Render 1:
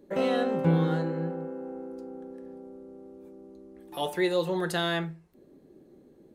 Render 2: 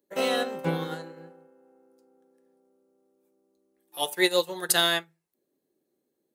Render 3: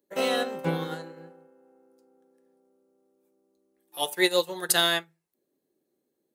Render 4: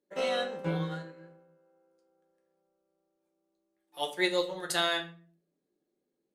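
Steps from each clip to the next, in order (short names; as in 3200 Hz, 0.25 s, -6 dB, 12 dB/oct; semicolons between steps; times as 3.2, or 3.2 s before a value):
RIAA curve recording; upward expander 2.5:1, over -41 dBFS; gain +7 dB
nothing audible
air absorption 60 m; shoebox room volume 30 m³, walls mixed, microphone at 0.38 m; gain -5.5 dB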